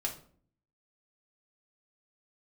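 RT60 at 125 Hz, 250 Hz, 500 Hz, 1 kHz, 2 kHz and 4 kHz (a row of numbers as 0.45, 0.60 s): 0.80, 0.80, 0.55, 0.45, 0.40, 0.35 s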